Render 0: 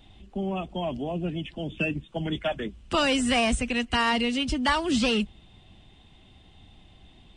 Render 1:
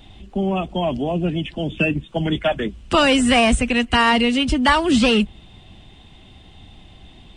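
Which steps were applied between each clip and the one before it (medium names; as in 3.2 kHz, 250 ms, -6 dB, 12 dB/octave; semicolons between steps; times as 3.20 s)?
dynamic bell 5.5 kHz, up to -5 dB, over -45 dBFS, Q 1.2; trim +8.5 dB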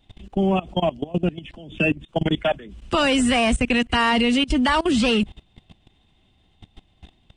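level held to a coarse grid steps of 21 dB; trim +2.5 dB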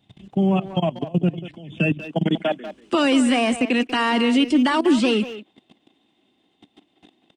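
high-pass sweep 140 Hz -> 290 Hz, 1.85–2.79 s; speakerphone echo 190 ms, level -11 dB; trim -2.5 dB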